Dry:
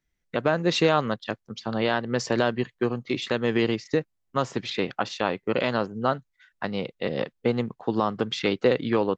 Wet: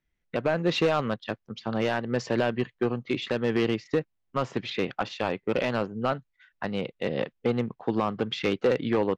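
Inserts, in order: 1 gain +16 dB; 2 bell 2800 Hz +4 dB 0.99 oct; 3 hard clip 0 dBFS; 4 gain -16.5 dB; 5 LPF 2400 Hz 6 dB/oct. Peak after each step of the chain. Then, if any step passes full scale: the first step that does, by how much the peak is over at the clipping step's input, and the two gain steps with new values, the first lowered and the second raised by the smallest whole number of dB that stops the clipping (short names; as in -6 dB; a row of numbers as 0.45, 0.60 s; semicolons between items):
+8.5, +9.5, 0.0, -16.5, -16.5 dBFS; step 1, 9.5 dB; step 1 +6 dB, step 4 -6.5 dB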